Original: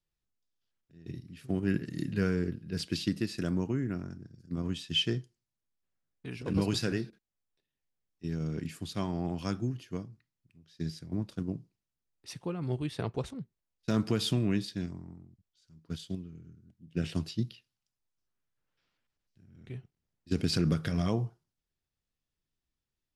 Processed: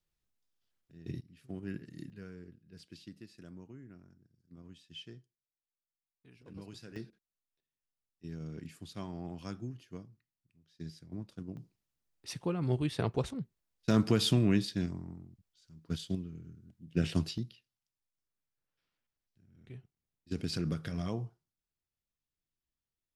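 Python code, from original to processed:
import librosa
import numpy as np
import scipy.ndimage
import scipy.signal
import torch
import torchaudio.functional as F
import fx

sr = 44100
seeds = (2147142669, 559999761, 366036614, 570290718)

y = fx.gain(x, sr, db=fx.steps((0.0, 1.0), (1.21, -11.0), (2.1, -19.0), (6.96, -8.5), (11.57, 2.0), (17.38, -6.5)))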